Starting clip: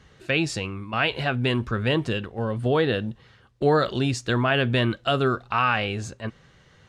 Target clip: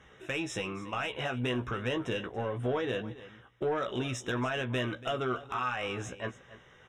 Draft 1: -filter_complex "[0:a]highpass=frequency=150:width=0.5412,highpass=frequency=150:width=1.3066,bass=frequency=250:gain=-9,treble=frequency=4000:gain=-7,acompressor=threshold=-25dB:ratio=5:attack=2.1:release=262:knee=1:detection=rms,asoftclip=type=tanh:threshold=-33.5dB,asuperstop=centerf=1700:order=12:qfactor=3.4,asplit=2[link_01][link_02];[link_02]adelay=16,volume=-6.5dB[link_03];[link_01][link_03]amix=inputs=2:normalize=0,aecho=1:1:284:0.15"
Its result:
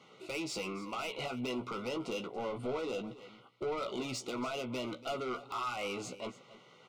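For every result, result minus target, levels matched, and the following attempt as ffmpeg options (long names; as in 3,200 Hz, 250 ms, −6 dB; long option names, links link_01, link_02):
125 Hz band −7.0 dB; soft clipping: distortion +8 dB; 2,000 Hz band −3.0 dB
-filter_complex "[0:a]bass=frequency=250:gain=-9,treble=frequency=4000:gain=-7,acompressor=threshold=-25dB:ratio=5:attack=2.1:release=262:knee=1:detection=rms,asoftclip=type=tanh:threshold=-33.5dB,asuperstop=centerf=1700:order=12:qfactor=3.4,asplit=2[link_01][link_02];[link_02]adelay=16,volume=-6.5dB[link_03];[link_01][link_03]amix=inputs=2:normalize=0,aecho=1:1:284:0.15"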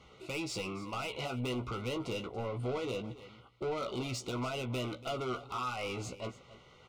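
soft clipping: distortion +8 dB; 2,000 Hz band −3.5 dB
-filter_complex "[0:a]bass=frequency=250:gain=-9,treble=frequency=4000:gain=-7,acompressor=threshold=-25dB:ratio=5:attack=2.1:release=262:knee=1:detection=rms,asoftclip=type=tanh:threshold=-25.5dB,asuperstop=centerf=1700:order=12:qfactor=3.4,asplit=2[link_01][link_02];[link_02]adelay=16,volume=-6.5dB[link_03];[link_01][link_03]amix=inputs=2:normalize=0,aecho=1:1:284:0.15"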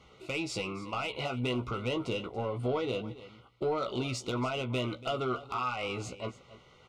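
2,000 Hz band −3.0 dB
-filter_complex "[0:a]bass=frequency=250:gain=-9,treble=frequency=4000:gain=-7,acompressor=threshold=-25dB:ratio=5:attack=2.1:release=262:knee=1:detection=rms,asoftclip=type=tanh:threshold=-25.5dB,asuperstop=centerf=4500:order=12:qfactor=3.4,asplit=2[link_01][link_02];[link_02]adelay=16,volume=-6.5dB[link_03];[link_01][link_03]amix=inputs=2:normalize=0,aecho=1:1:284:0.15"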